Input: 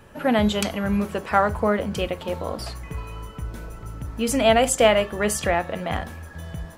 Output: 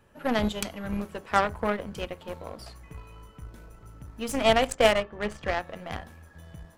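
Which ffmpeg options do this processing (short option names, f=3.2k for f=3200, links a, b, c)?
-filter_complex "[0:a]aeval=exprs='0.668*(cos(1*acos(clip(val(0)/0.668,-1,1)))-cos(1*PI/2))+0.168*(cos(3*acos(clip(val(0)/0.668,-1,1)))-cos(3*PI/2))+0.0944*(cos(5*acos(clip(val(0)/0.668,-1,1)))-cos(5*PI/2))+0.0668*(cos(7*acos(clip(val(0)/0.668,-1,1)))-cos(7*PI/2))+0.0168*(cos(8*acos(clip(val(0)/0.668,-1,1)))-cos(8*PI/2))':c=same,asettb=1/sr,asplit=3[a][b][c];[a]atrim=end=4.674[d];[b]atrim=start=4.67:end=5.49,asetpts=PTS-STARTPTS,afade=t=in:d=0.004:c=qsin,afade=t=out:st=0.816:d=0.004:c=qsin,adynamicsmooth=sensitivity=3.5:basefreq=2.4k[e];[c]atrim=start=5.486[f];[d][e]acrossfade=d=0.004:c1=hsin:c2=qsin[g];[g][f]acrossfade=d=0.004:c1=qsin:c2=hsin"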